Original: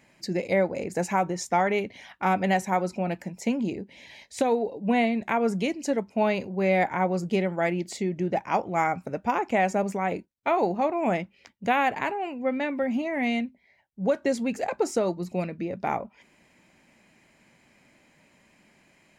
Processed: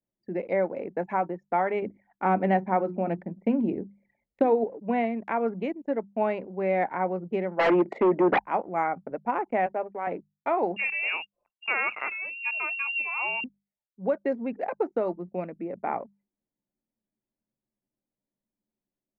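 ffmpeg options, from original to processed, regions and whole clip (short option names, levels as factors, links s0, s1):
-filter_complex "[0:a]asettb=1/sr,asplit=3[s0][s1][s2];[s0]atrim=end=1.824[s3];[s1]atrim=start=1.82:end=4.64,asetpts=PTS-STARTPTS,afade=t=in:d=0.004:c=qsin,afade=t=out:st=2.816:d=0.004:c=qsin,lowshelf=f=380:g=10,bandreject=f=60:t=h:w=6,bandreject=f=120:t=h:w=6,bandreject=f=180:t=h:w=6,bandreject=f=240:t=h:w=6,bandreject=f=300:t=h:w=6,bandreject=f=360:t=h:w=6[s4];[s2]atrim=start=4.636[s5];[s3][s4]acrossfade=d=0.004:c1=hsin:c2=qsin[s6];[s6][s5]acrossfade=d=0.004:c1=qsin:c2=hsin,asettb=1/sr,asplit=3[s7][s8][s9];[s7]atrim=end=7.594[s10];[s8]atrim=start=7.59:end=8.39,asetpts=PTS-STARTPTS,afade=t=in:d=0.004:c=qsin,afade=t=out:st=0.796:d=0.004:c=qsin,deesser=0.75,acrossover=split=260 2100:gain=0.224 1 0.224[s11][s12][s13];[s11][s12][s13]amix=inputs=3:normalize=0,aeval=exprs='0.188*sin(PI/2*4.47*val(0)/0.188)':c=same[s14];[s9]atrim=start=8.386[s15];[s10][s14]acrossfade=d=0.004:c1=hsin:c2=qsin[s16];[s16][s15]acrossfade=d=0.004:c1=qsin:c2=hsin,asettb=1/sr,asplit=3[s17][s18][s19];[s17]atrim=end=9.664[s20];[s18]atrim=start=9.66:end=10.07,asetpts=PTS-STARTPTS,afade=t=in:d=0.004:c=qsin,afade=t=out:st=0.406:d=0.004:c=qsin,aeval=exprs='if(lt(val(0),0),0.708*val(0),val(0))':c=same,highpass=350[s21];[s19]atrim=start=10.066[s22];[s20][s21]acrossfade=d=0.004:c1=hsin:c2=qsin[s23];[s23][s22]acrossfade=d=0.004:c1=qsin:c2=hsin,asettb=1/sr,asplit=3[s24][s25][s26];[s24]atrim=end=10.764[s27];[s25]atrim=start=10.76:end=13.44,asetpts=PTS-STARTPTS,afade=t=in:d=0.004:c=qsin,afade=t=out:st=2.676:d=0.004:c=qsin,equalizer=f=310:w=1.4:g=11,acompressor=mode=upward:threshold=0.01:ratio=2.5:attack=3.2:release=140:knee=2.83:detection=peak,lowpass=f=2600:t=q:w=0.5098,lowpass=f=2600:t=q:w=0.6013,lowpass=f=2600:t=q:w=0.9,lowpass=f=2600:t=q:w=2.563,afreqshift=-3000[s28];[s26]atrim=start=13.436[s29];[s27][s28]acrossfade=d=0.004:c1=hsin:c2=qsin[s30];[s30][s29]acrossfade=d=0.004:c1=qsin:c2=hsin,acrossover=split=200 2200:gain=0.2 1 0.0708[s31][s32][s33];[s31][s32][s33]amix=inputs=3:normalize=0,anlmdn=0.631,bandreject=f=50:t=h:w=6,bandreject=f=100:t=h:w=6,bandreject=f=150:t=h:w=6,bandreject=f=200:t=h:w=6,volume=0.841"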